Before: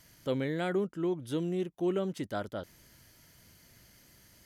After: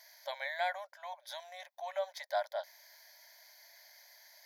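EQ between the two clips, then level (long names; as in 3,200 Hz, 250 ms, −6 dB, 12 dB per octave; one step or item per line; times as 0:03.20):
linear-phase brick-wall high-pass 550 Hz
phaser with its sweep stopped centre 1,900 Hz, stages 8
+5.5 dB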